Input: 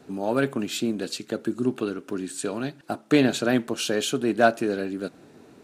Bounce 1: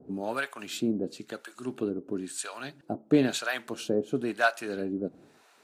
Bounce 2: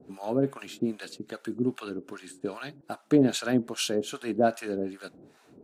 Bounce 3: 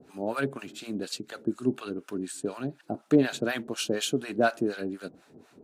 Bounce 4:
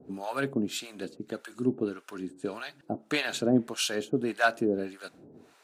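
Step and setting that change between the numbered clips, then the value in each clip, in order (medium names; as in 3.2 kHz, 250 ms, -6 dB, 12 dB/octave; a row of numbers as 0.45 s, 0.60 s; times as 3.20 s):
harmonic tremolo, rate: 1 Hz, 2.5 Hz, 4.1 Hz, 1.7 Hz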